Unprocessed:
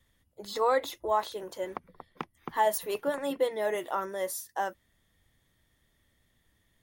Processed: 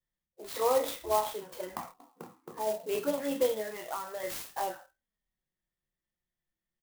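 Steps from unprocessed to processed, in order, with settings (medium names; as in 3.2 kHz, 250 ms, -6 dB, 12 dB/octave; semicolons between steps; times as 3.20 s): spectral sustain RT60 0.42 s; spectral noise reduction 20 dB; 3.54–4.23 s: compression 16:1, threshold -30 dBFS, peak gain reduction 6.5 dB; touch-sensitive flanger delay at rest 5.6 ms, full sweep at -26 dBFS; 1.91–2.89 s: band-pass filter 320 Hz, Q 1.2; doubling 28 ms -7 dB; sampling jitter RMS 0.05 ms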